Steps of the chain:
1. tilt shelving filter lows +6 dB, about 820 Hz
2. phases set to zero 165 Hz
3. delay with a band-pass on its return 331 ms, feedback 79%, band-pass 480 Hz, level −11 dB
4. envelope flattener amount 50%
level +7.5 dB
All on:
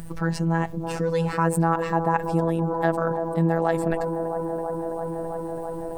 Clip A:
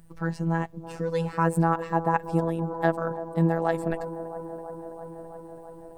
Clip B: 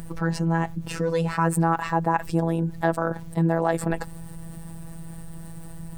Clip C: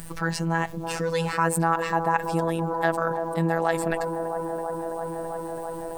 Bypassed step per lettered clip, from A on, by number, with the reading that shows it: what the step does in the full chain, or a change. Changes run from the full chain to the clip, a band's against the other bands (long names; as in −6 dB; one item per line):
4, change in crest factor +2.5 dB
3, change in momentary loudness spread +10 LU
1, 8 kHz band +7.0 dB